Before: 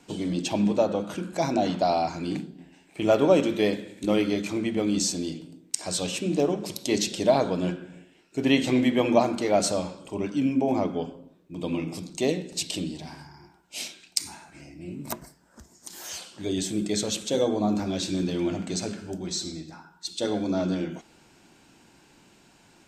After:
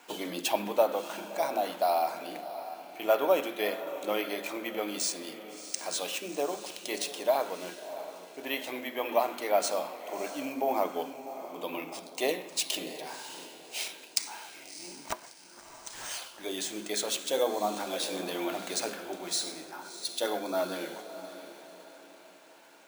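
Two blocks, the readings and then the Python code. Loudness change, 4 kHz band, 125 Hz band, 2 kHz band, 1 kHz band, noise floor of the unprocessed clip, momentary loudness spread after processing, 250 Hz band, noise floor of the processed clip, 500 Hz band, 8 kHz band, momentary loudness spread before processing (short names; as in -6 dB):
-6.0 dB, -2.5 dB, -21.0 dB, -1.5 dB, -1.0 dB, -58 dBFS, 15 LU, -14.0 dB, -53 dBFS, -4.5 dB, -3.0 dB, 16 LU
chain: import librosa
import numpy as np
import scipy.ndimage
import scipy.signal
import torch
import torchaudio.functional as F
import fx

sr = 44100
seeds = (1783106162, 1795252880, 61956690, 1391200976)

y = scipy.signal.sosfilt(scipy.signal.butter(2, 760.0, 'highpass', fs=sr, output='sos'), x)
y = fx.high_shelf(y, sr, hz=2300.0, db=-8.5)
y = fx.rider(y, sr, range_db=10, speed_s=2.0)
y = fx.echo_diffused(y, sr, ms=656, feedback_pct=42, wet_db=-12)
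y = np.repeat(y[::3], 3)[:len(y)]
y = y * librosa.db_to_amplitude(2.5)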